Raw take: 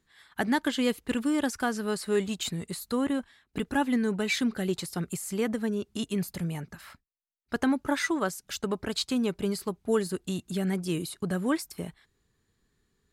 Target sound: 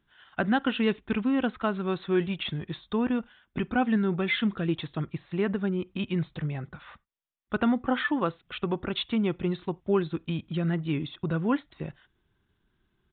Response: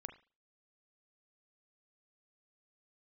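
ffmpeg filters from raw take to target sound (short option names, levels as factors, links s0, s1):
-filter_complex "[0:a]asetrate=39289,aresample=44100,atempo=1.12246,asplit=2[s0][s1];[1:a]atrim=start_sample=2205,atrim=end_sample=4410[s2];[s1][s2]afir=irnorm=-1:irlink=0,volume=0.282[s3];[s0][s3]amix=inputs=2:normalize=0,aresample=8000,aresample=44100"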